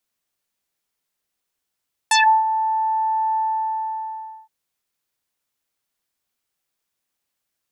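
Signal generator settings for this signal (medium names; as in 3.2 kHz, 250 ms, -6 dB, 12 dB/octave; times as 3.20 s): synth note saw A5 24 dB/octave, low-pass 990 Hz, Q 3.6, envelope 3.5 oct, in 0.16 s, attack 3.4 ms, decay 0.32 s, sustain -12.5 dB, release 1.12 s, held 1.25 s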